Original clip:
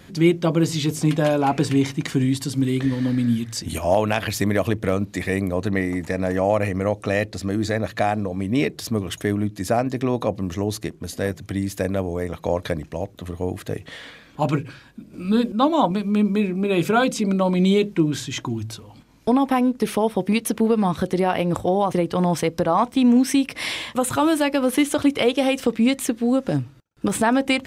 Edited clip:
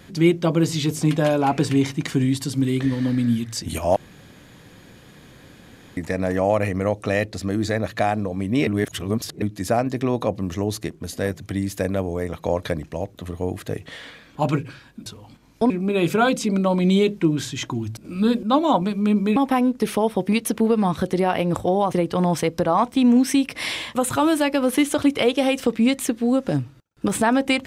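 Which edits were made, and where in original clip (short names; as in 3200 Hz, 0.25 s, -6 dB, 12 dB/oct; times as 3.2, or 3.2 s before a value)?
3.96–5.97 room tone
8.67–9.42 reverse
15.06–16.45 swap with 18.72–19.36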